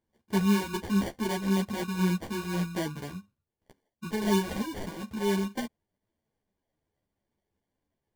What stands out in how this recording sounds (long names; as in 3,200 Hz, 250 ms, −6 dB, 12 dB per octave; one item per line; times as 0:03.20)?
phaser sweep stages 2, 4 Hz, lowest notch 480–1,300 Hz
aliases and images of a low sample rate 1,300 Hz, jitter 0%
a shimmering, thickened sound